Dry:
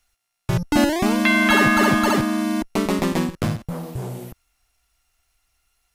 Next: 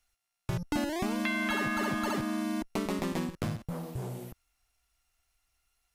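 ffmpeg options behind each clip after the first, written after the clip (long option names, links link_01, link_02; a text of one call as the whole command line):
ffmpeg -i in.wav -af "acompressor=threshold=-21dB:ratio=4,volume=-7.5dB" out.wav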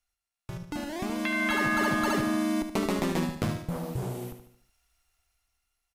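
ffmpeg -i in.wav -af "dynaudnorm=framelen=270:gausssize=9:maxgain=11.5dB,aecho=1:1:74|148|222|296|370:0.355|0.167|0.0784|0.0368|0.0173,volume=-7dB" out.wav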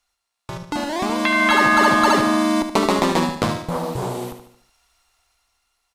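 ffmpeg -i in.wav -af "equalizer=frequency=250:width_type=o:width=1:gain=4,equalizer=frequency=500:width_type=o:width=1:gain=6,equalizer=frequency=1000:width_type=o:width=1:gain=12,equalizer=frequency=2000:width_type=o:width=1:gain=3,equalizer=frequency=4000:width_type=o:width=1:gain=9,equalizer=frequency=8000:width_type=o:width=1:gain=6,volume=2.5dB" out.wav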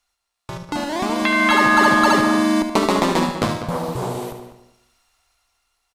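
ffmpeg -i in.wav -filter_complex "[0:a]asplit=2[link_01][link_02];[link_02]adelay=198,lowpass=frequency=2300:poles=1,volume=-10dB,asplit=2[link_03][link_04];[link_04]adelay=198,lowpass=frequency=2300:poles=1,volume=0.19,asplit=2[link_05][link_06];[link_06]adelay=198,lowpass=frequency=2300:poles=1,volume=0.19[link_07];[link_01][link_03][link_05][link_07]amix=inputs=4:normalize=0" out.wav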